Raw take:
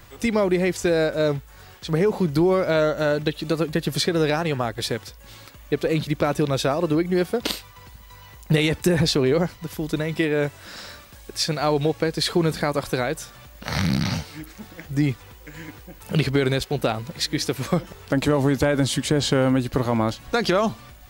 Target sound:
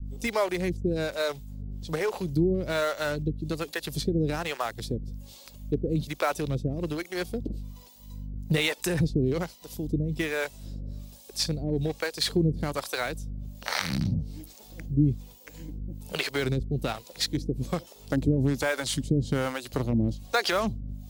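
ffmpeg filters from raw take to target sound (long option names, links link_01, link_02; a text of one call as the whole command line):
ffmpeg -i in.wav -filter_complex "[0:a]aeval=exprs='val(0)+0.02*(sin(2*PI*50*n/s)+sin(2*PI*2*50*n/s)/2+sin(2*PI*3*50*n/s)/3+sin(2*PI*4*50*n/s)/4+sin(2*PI*5*50*n/s)/5)':channel_layout=same,acrossover=split=450[link_01][link_02];[link_01]aeval=exprs='val(0)*(1-1/2+1/2*cos(2*PI*1.2*n/s))':channel_layout=same[link_03];[link_02]aeval=exprs='val(0)*(1-1/2-1/2*cos(2*PI*1.2*n/s))':channel_layout=same[link_04];[link_03][link_04]amix=inputs=2:normalize=0,acrossover=split=800|3100[link_05][link_06][link_07];[link_06]acrusher=bits=5:mix=0:aa=0.5[link_08];[link_05][link_08][link_07]amix=inputs=3:normalize=0,adynamicequalizer=threshold=0.0126:dfrequency=530:dqfactor=0.76:tfrequency=530:tqfactor=0.76:attack=5:release=100:ratio=0.375:range=2.5:mode=cutabove:tftype=bell" out.wav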